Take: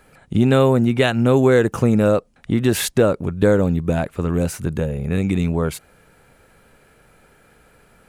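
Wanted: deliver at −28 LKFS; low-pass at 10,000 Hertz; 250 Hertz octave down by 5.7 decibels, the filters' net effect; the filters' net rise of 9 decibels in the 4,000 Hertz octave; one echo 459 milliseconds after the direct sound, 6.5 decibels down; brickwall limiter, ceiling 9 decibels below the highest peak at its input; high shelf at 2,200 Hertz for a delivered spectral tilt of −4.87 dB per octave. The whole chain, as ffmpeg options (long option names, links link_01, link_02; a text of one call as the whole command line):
ffmpeg -i in.wav -af "lowpass=10000,equalizer=frequency=250:width_type=o:gain=-7.5,highshelf=frequency=2200:gain=5,equalizer=frequency=4000:width_type=o:gain=6.5,alimiter=limit=-8dB:level=0:latency=1,aecho=1:1:459:0.473,volume=-7dB" out.wav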